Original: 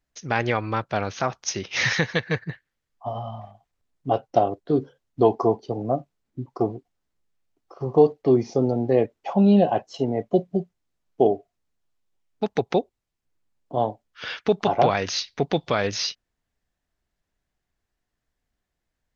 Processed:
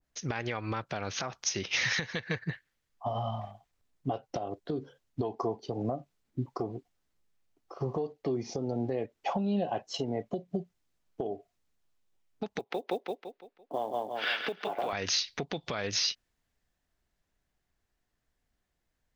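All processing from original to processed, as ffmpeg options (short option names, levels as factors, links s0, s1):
-filter_complex "[0:a]asettb=1/sr,asplit=3[s0][s1][s2];[s0]atrim=end=12.594[s3];[s1]atrim=start=12.59:end=14.93,asetpts=PTS-STARTPTS,afade=t=in:d=0.004:c=qsin,afade=t=out:st=2.336:d=0.004:c=qsin,acrossover=split=240 4300:gain=0.0891 1 0.0794[s4][s5][s6];[s4][s5][s6]amix=inputs=3:normalize=0,acrusher=bits=9:mode=log:mix=0:aa=0.000001,aecho=1:1:169|338|507|676|845:0.501|0.2|0.0802|0.0321|0.0128,atrim=end_sample=103194[s7];[s2]atrim=start=14.926[s8];[s3][s7]acrossfade=d=0.004:c1=hsin:c2=qsin[s9];[s9][s8]acrossfade=d=0.004:c1=qsin:c2=hsin,acompressor=threshold=0.0562:ratio=12,alimiter=limit=0.0841:level=0:latency=1:release=184,adynamicequalizer=threshold=0.00398:dfrequency=1500:dqfactor=0.7:tfrequency=1500:tqfactor=0.7:attack=5:release=100:ratio=0.375:range=2:mode=boostabove:tftype=highshelf"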